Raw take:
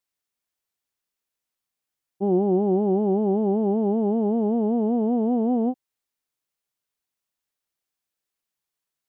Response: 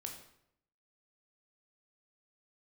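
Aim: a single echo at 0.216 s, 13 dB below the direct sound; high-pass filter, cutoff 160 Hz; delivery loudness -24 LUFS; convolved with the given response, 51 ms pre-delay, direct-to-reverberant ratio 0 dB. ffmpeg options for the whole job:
-filter_complex "[0:a]highpass=160,aecho=1:1:216:0.224,asplit=2[a][b];[1:a]atrim=start_sample=2205,adelay=51[c];[b][c]afir=irnorm=-1:irlink=0,volume=3dB[d];[a][d]amix=inputs=2:normalize=0,volume=-4dB"

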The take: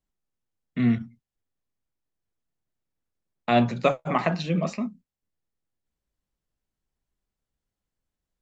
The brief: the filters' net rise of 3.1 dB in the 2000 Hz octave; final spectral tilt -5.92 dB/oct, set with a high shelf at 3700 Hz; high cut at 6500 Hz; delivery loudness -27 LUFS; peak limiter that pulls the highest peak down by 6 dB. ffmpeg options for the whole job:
-af "lowpass=6.5k,equalizer=f=2k:t=o:g=5,highshelf=f=3.7k:g=-3.5,volume=-0.5dB,alimiter=limit=-12.5dB:level=0:latency=1"

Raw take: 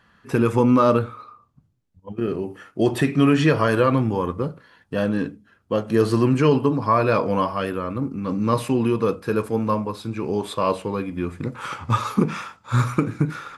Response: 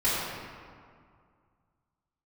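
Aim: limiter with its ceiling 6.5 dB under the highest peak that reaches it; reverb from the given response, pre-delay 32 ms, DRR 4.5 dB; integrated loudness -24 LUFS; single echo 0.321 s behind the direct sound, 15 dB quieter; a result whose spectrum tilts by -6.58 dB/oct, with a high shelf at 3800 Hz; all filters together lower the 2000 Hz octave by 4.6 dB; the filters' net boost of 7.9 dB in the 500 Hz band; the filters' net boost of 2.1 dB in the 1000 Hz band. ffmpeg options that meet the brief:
-filter_complex "[0:a]equalizer=f=500:t=o:g=9,equalizer=f=1k:t=o:g=3,equalizer=f=2k:t=o:g=-7.5,highshelf=f=3.8k:g=-4,alimiter=limit=-6dB:level=0:latency=1,aecho=1:1:321:0.178,asplit=2[a][b];[1:a]atrim=start_sample=2205,adelay=32[c];[b][c]afir=irnorm=-1:irlink=0,volume=-17.5dB[d];[a][d]amix=inputs=2:normalize=0,volume=-6.5dB"

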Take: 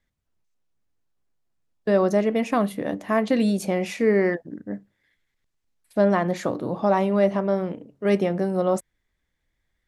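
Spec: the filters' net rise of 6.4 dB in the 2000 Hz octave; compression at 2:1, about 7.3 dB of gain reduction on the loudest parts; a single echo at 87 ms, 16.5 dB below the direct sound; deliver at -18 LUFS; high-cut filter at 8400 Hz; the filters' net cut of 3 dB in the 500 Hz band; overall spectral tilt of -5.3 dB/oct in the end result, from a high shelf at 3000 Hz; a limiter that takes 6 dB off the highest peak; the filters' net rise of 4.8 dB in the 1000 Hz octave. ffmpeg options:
-af "lowpass=8.4k,equalizer=f=500:t=o:g=-6.5,equalizer=f=1k:t=o:g=7,equalizer=f=2k:t=o:g=4,highshelf=f=3k:g=5.5,acompressor=threshold=-28dB:ratio=2,alimiter=limit=-19dB:level=0:latency=1,aecho=1:1:87:0.15,volume=13.5dB"

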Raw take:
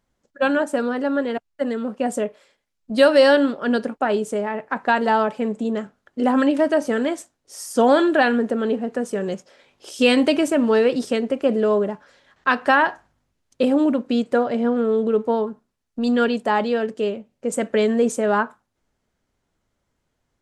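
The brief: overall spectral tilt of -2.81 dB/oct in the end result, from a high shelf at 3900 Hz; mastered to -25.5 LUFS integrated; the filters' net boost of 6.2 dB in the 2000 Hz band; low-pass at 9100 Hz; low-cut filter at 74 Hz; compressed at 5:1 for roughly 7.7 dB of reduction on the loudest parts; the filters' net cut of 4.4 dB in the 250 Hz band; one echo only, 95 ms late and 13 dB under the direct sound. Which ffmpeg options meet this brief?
-af "highpass=74,lowpass=9.1k,equalizer=f=250:t=o:g=-5,equalizer=f=2k:t=o:g=6.5,highshelf=f=3.9k:g=8,acompressor=threshold=-17dB:ratio=5,aecho=1:1:95:0.224,volume=-2dB"

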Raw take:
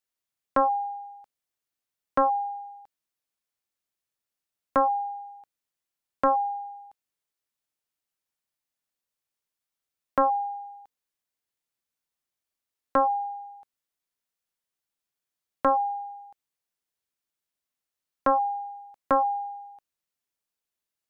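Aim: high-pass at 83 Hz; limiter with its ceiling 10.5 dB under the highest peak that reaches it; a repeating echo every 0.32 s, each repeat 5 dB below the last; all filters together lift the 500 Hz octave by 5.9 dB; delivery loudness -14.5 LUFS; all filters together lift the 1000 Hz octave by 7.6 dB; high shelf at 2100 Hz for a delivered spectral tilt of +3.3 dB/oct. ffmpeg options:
-af "highpass=83,equalizer=f=500:t=o:g=4,equalizer=f=1k:t=o:g=7,highshelf=f=2.1k:g=7,alimiter=limit=-17dB:level=0:latency=1,aecho=1:1:320|640|960|1280|1600|1920|2240:0.562|0.315|0.176|0.0988|0.0553|0.031|0.0173,volume=11.5dB"

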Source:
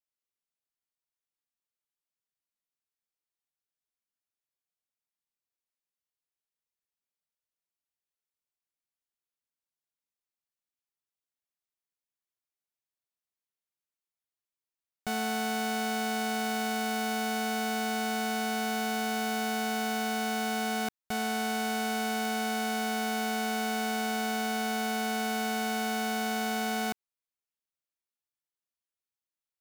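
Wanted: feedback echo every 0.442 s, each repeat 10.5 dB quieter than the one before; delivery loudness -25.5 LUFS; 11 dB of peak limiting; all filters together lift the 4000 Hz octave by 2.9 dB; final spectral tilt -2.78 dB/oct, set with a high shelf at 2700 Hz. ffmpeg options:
-af "highshelf=f=2.7k:g=-5.5,equalizer=f=4k:t=o:g=8.5,alimiter=level_in=7.5dB:limit=-24dB:level=0:latency=1,volume=-7.5dB,aecho=1:1:442|884|1326:0.299|0.0896|0.0269,volume=13dB"

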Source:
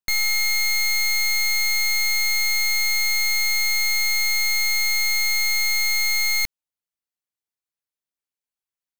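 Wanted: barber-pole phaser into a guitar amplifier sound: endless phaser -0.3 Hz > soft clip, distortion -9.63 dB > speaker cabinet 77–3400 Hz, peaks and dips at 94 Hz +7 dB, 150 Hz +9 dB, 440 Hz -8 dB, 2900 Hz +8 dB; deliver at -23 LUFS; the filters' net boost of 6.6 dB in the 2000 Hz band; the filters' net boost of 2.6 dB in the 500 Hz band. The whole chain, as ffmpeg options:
-filter_complex "[0:a]equalizer=f=500:t=o:g=7.5,equalizer=f=2k:t=o:g=5.5,asplit=2[a][b];[b]afreqshift=-0.3[c];[a][c]amix=inputs=2:normalize=1,asoftclip=threshold=-24dB,highpass=77,equalizer=f=94:t=q:w=4:g=7,equalizer=f=150:t=q:w=4:g=9,equalizer=f=440:t=q:w=4:g=-8,equalizer=f=2.9k:t=q:w=4:g=8,lowpass=f=3.4k:w=0.5412,lowpass=f=3.4k:w=1.3066,volume=2.5dB"

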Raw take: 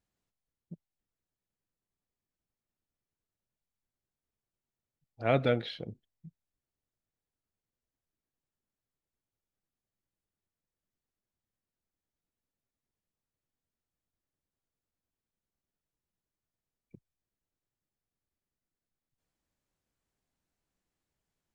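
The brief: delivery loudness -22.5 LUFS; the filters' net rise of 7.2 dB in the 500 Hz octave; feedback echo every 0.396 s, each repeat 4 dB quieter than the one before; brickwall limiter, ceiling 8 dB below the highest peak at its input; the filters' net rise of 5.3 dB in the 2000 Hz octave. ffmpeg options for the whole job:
-af "equalizer=f=500:t=o:g=8,equalizer=f=2k:t=o:g=6.5,alimiter=limit=-16dB:level=0:latency=1,aecho=1:1:396|792|1188|1584|1980|2376|2772|3168|3564:0.631|0.398|0.25|0.158|0.0994|0.0626|0.0394|0.0249|0.0157,volume=10dB"

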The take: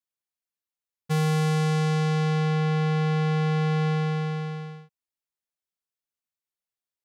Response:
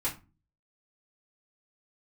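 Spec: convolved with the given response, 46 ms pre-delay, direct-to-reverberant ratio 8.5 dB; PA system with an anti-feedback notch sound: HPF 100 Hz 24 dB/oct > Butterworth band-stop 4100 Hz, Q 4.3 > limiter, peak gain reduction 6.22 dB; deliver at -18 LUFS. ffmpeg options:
-filter_complex "[0:a]asplit=2[a][b];[1:a]atrim=start_sample=2205,adelay=46[c];[b][c]afir=irnorm=-1:irlink=0,volume=-14dB[d];[a][d]amix=inputs=2:normalize=0,highpass=f=100:w=0.5412,highpass=f=100:w=1.3066,asuperstop=centerf=4100:order=8:qfactor=4.3,volume=9.5dB,alimiter=limit=-9dB:level=0:latency=1"

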